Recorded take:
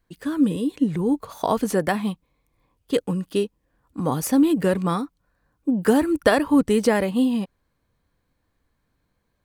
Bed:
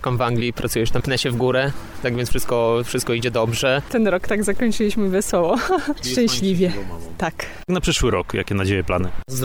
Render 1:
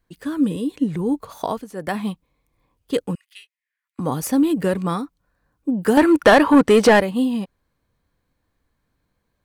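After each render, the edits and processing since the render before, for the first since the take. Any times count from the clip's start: 1.41–1.98 s: dip -15 dB, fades 0.25 s; 3.15–3.99 s: ladder high-pass 1.9 kHz, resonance 70%; 5.97–7.00 s: overdrive pedal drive 22 dB, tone 2.4 kHz, clips at -2 dBFS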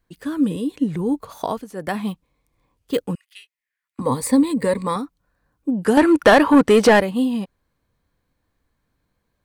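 2.08–3.01 s: careless resampling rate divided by 2×, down none, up hold; 4.01–4.96 s: rippled EQ curve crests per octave 0.97, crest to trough 13 dB; 5.71–6.17 s: brick-wall FIR low-pass 12 kHz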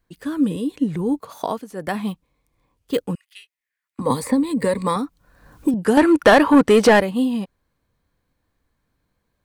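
1.19–1.71 s: high-pass 140 Hz; 4.10–5.74 s: three bands compressed up and down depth 100%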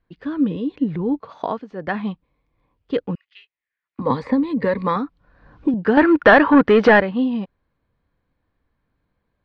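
Bessel low-pass 2.8 kHz, order 6; dynamic bell 1.6 kHz, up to +6 dB, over -36 dBFS, Q 2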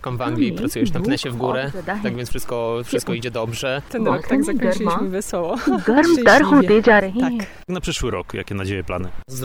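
add bed -4.5 dB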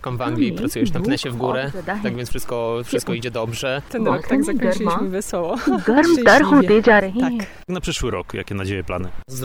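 no audible change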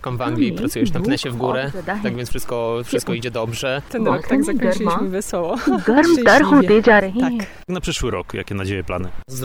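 trim +1 dB; peak limiter -3 dBFS, peak gain reduction 2 dB

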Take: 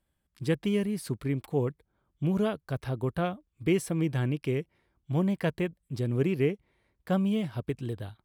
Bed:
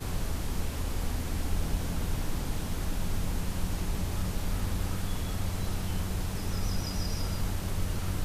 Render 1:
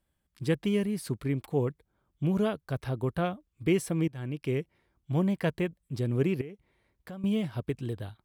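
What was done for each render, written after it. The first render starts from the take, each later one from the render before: 4.08–4.55 s: fade in, from -20 dB; 6.41–7.24 s: compression 4:1, threshold -41 dBFS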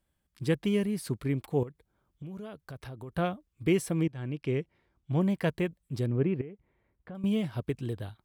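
1.63–3.12 s: compression 5:1, threshold -40 dBFS; 4.03–5.21 s: distance through air 63 m; 6.06–7.15 s: distance through air 490 m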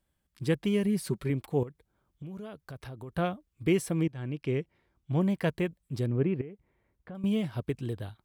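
0.84–1.30 s: comb 5.3 ms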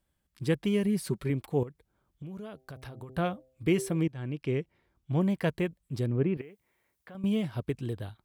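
2.50–3.97 s: de-hum 129.8 Hz, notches 6; 6.37–7.15 s: tilt EQ +3.5 dB/octave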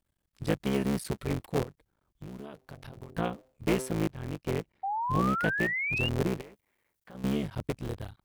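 cycle switcher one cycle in 3, muted; 4.83–6.09 s: painted sound rise 760–2900 Hz -31 dBFS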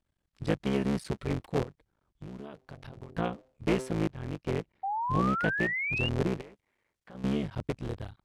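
distance through air 57 m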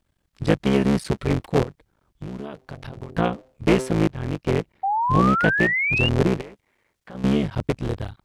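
trim +9.5 dB

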